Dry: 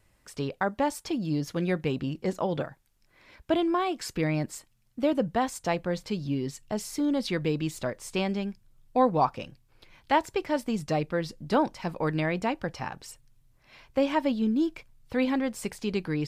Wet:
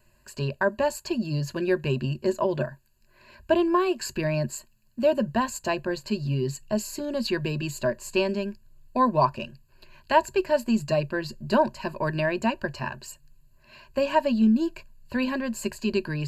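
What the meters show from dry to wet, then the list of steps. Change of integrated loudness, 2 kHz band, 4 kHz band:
+2.5 dB, +4.0 dB, +3.0 dB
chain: EQ curve with evenly spaced ripples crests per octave 1.4, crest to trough 16 dB

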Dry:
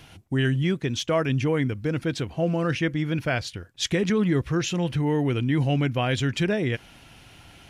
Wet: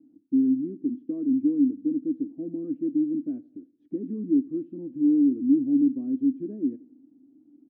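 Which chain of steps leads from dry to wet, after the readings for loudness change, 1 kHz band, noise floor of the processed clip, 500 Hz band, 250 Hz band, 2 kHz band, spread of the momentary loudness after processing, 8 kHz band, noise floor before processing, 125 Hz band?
−0.5 dB, below −35 dB, −61 dBFS, −11.0 dB, +3.5 dB, below −40 dB, 12 LU, below −40 dB, −51 dBFS, −23.0 dB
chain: flat-topped band-pass 280 Hz, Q 4.8
on a send: repeating echo 84 ms, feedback 54%, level −23 dB
on the sum: level +8 dB

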